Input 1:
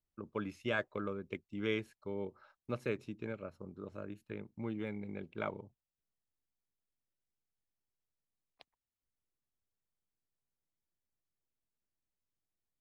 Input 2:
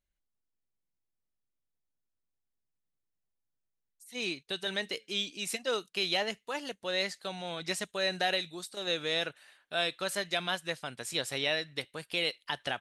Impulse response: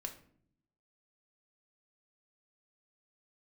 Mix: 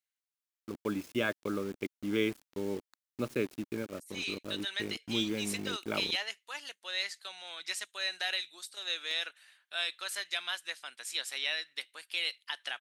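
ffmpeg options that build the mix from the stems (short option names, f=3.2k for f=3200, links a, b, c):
-filter_complex "[0:a]highshelf=f=2.7k:g=11,acrusher=bits=7:mix=0:aa=0.000001,adelay=500,volume=-1dB[a];[1:a]highpass=1.4k,volume=-1dB[b];[a][b]amix=inputs=2:normalize=0,equalizer=f=290:t=o:w=1.2:g=9"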